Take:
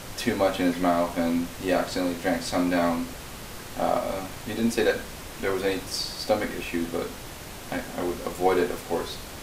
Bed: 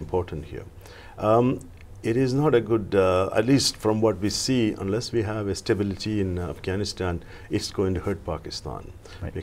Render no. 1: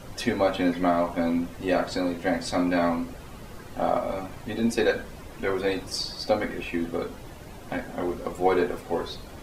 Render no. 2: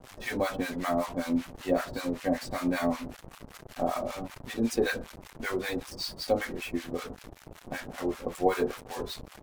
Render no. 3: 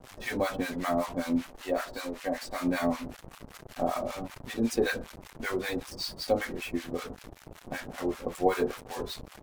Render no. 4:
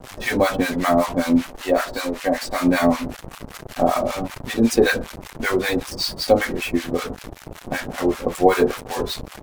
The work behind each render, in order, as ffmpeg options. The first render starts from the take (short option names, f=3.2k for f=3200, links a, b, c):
-af "afftdn=nr=11:nf=-40"
-filter_complex "[0:a]acrusher=bits=5:mix=0:aa=0.5,acrossover=split=870[a][b];[a]aeval=exprs='val(0)*(1-1/2+1/2*cos(2*PI*5.2*n/s))':c=same[c];[b]aeval=exprs='val(0)*(1-1/2-1/2*cos(2*PI*5.2*n/s))':c=same[d];[c][d]amix=inputs=2:normalize=0"
-filter_complex "[0:a]asettb=1/sr,asplit=3[a][b][c];[a]atrim=end=1.464[d];[b]atrim=start=1.46:end=2.6,asetpts=PTS-STARTPTS,afade=t=in:d=0.004:c=qsin,afade=t=out:st=1.136:d=0.004:c=qsin,equalizer=f=120:w=0.58:g=-13.5[e];[c]atrim=start=2.596[f];[d][e]acrossfade=d=0.004:c1=hsin:c2=qsin[g];[g][f]acrossfade=d=0.004:c1=qsin:c2=hsin"
-af "volume=11dB,alimiter=limit=-1dB:level=0:latency=1"